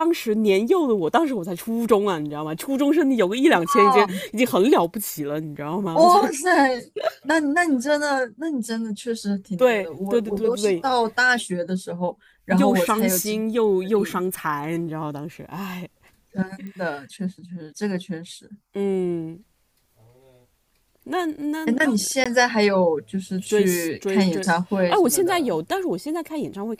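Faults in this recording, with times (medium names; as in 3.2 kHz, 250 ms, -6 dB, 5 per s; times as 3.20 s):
16.67 s: pop -25 dBFS
22.24–22.26 s: dropout 16 ms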